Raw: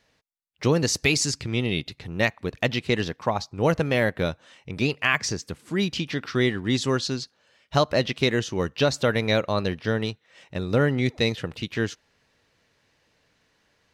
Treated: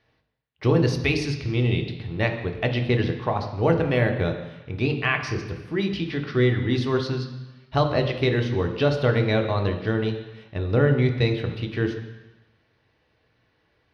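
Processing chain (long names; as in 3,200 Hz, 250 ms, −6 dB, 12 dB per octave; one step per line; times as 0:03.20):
moving average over 6 samples
on a send: convolution reverb RT60 1.1 s, pre-delay 3 ms, DRR 4 dB
on the sum: level −1.5 dB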